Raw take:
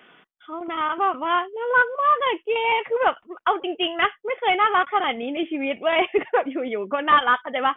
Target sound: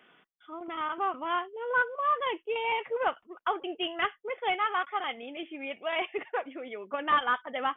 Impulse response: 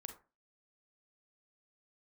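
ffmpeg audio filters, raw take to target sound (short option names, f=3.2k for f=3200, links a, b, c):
-filter_complex "[0:a]asettb=1/sr,asplit=3[a][b][c];[a]atrim=end=4.544[d];[b]atrim=start=4.54:end=6.94,asetpts=PTS-STARTPTS,afade=t=in:d=0.004:c=qsin,afade=t=out:st=2.396:d=0.004:c=qsin,lowshelf=f=460:g=-9[e];[c]atrim=start=6.936[f];[d][e]acrossfade=d=0.004:c1=hsin:c2=qsin[g];[g][f]acrossfade=d=0.004:c1=qsin:c2=hsin,volume=-8.5dB"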